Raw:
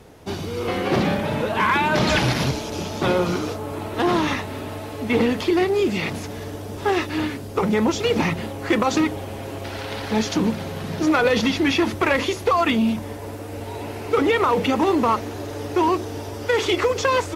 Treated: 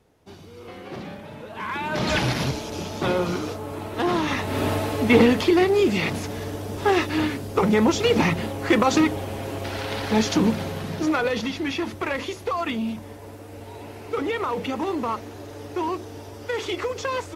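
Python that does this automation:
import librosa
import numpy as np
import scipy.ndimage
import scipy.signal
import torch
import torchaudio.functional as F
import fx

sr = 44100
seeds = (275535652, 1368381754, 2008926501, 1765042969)

y = fx.gain(x, sr, db=fx.line((1.44, -15.5), (2.15, -3.0), (4.27, -3.0), (4.65, 8.5), (5.56, 1.0), (10.62, 1.0), (11.46, -7.5)))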